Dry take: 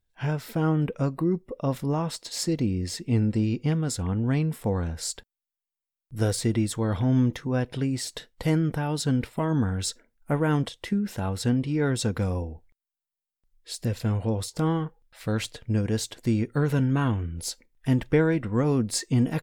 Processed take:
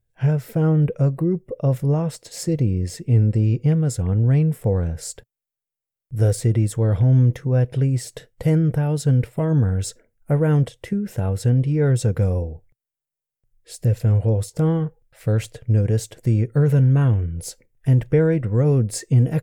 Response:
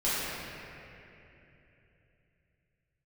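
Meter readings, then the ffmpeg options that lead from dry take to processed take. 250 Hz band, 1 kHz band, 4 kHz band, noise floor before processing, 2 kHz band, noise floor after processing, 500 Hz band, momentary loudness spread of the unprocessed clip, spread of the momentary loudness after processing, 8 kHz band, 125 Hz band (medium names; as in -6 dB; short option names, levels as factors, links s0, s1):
+2.5 dB, -2.0 dB, -5.0 dB, under -85 dBFS, -2.0 dB, under -85 dBFS, +5.0 dB, 8 LU, 9 LU, 0.0 dB, +9.5 dB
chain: -filter_complex "[0:a]equalizer=f=125:t=o:w=1:g=11,equalizer=f=250:t=o:w=1:g=-6,equalizer=f=500:t=o:w=1:g=7,equalizer=f=1000:t=o:w=1:g=-7,equalizer=f=4000:t=o:w=1:g=-9,asplit=2[s0][s1];[s1]alimiter=limit=0.224:level=0:latency=1:release=32,volume=1.12[s2];[s0][s2]amix=inputs=2:normalize=0,volume=0.596"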